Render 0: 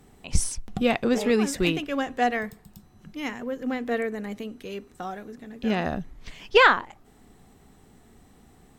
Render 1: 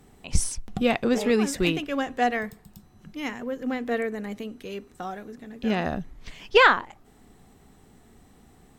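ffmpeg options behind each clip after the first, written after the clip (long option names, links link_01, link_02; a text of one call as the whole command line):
ffmpeg -i in.wav -af anull out.wav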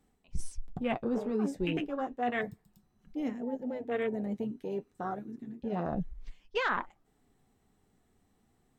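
ffmpeg -i in.wav -af "afwtdn=0.0355,areverse,acompressor=threshold=-30dB:ratio=5,areverse,flanger=delay=3.5:depth=7.4:regen=-48:speed=0.31:shape=triangular,volume=4.5dB" out.wav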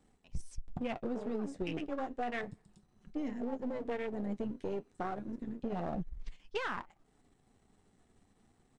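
ffmpeg -i in.wav -af "aeval=exprs='if(lt(val(0),0),0.447*val(0),val(0))':channel_layout=same,acompressor=threshold=-37dB:ratio=12,aresample=22050,aresample=44100,volume=4.5dB" out.wav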